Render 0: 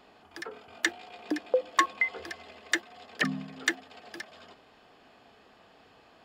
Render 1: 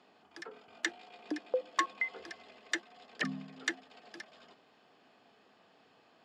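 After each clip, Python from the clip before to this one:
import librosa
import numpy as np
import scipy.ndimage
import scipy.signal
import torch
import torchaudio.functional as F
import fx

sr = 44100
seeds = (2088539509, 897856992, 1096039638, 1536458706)

y = scipy.signal.sosfilt(scipy.signal.cheby1(2, 1.0, [160.0, 7000.0], 'bandpass', fs=sr, output='sos'), x)
y = F.gain(torch.from_numpy(y), -6.0).numpy()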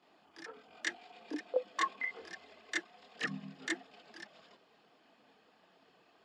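y = fx.chorus_voices(x, sr, voices=6, hz=1.1, base_ms=25, depth_ms=3.5, mix_pct=65)
y = F.gain(torch.from_numpy(y), 1.0).numpy()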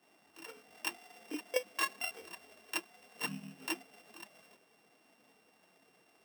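y = np.r_[np.sort(x[:len(x) // 16 * 16].reshape(-1, 16), axis=1).ravel(), x[len(x) // 16 * 16:]]
y = F.gain(torch.from_numpy(y), -1.0).numpy()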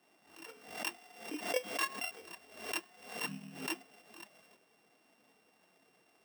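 y = fx.comb_fb(x, sr, f0_hz=360.0, decay_s=0.61, harmonics='all', damping=0.0, mix_pct=40)
y = fx.pre_swell(y, sr, db_per_s=93.0)
y = F.gain(torch.from_numpy(y), 2.5).numpy()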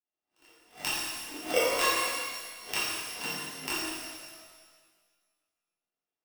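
y = fx.power_curve(x, sr, exponent=2.0)
y = fx.rev_shimmer(y, sr, seeds[0], rt60_s=1.6, semitones=12, shimmer_db=-8, drr_db=-8.5)
y = F.gain(torch.from_numpy(y), 8.0).numpy()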